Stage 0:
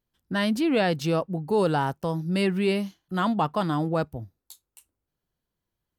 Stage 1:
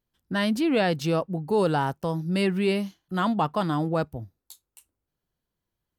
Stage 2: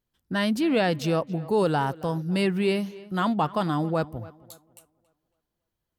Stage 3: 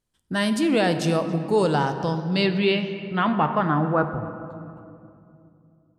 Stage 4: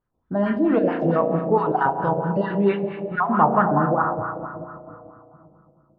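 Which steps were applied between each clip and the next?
nothing audible
tape echo 0.276 s, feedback 38%, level -18 dB, low-pass 3400 Hz
low-pass sweep 9300 Hz -> 640 Hz, 1.29–5.1; on a send at -8 dB: reverb RT60 2.6 s, pre-delay 7 ms; on the sum: gain +1.5 dB
random spectral dropouts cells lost 33%; spring tank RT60 2.1 s, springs 35 ms, chirp 70 ms, DRR 3.5 dB; LFO low-pass sine 4.5 Hz 600–1500 Hz

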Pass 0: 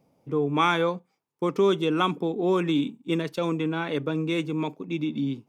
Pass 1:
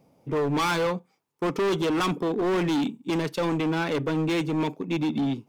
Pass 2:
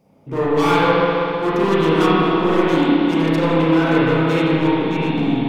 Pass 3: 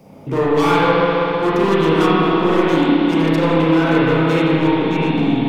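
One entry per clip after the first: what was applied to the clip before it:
overloaded stage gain 26.5 dB; gain +4.5 dB
spring tank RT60 3.1 s, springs 31/46 ms, chirp 45 ms, DRR -9.5 dB
three-band squash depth 40%; gain +1 dB

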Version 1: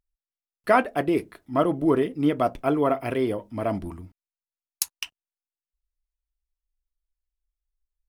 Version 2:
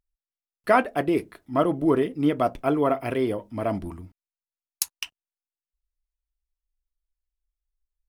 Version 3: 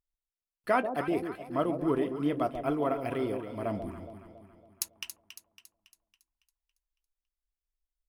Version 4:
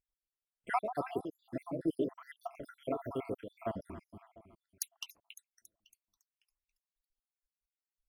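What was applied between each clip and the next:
nothing audible
echo with dull and thin repeats by turns 0.139 s, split 840 Hz, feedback 69%, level -7 dB; gain -7.5 dB
random spectral dropouts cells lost 71%; gain -2.5 dB

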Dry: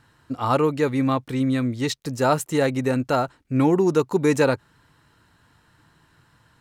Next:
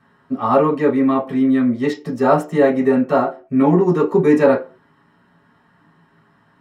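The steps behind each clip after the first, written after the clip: reverb RT60 0.35 s, pre-delay 3 ms, DRR -6 dB; gain -11 dB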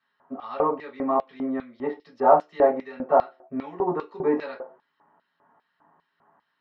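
LFO band-pass square 2.5 Hz 790–4600 Hz; air absorption 300 m; gain +3.5 dB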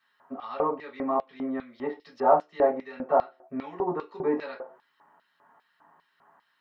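mismatched tape noise reduction encoder only; gain -3.5 dB

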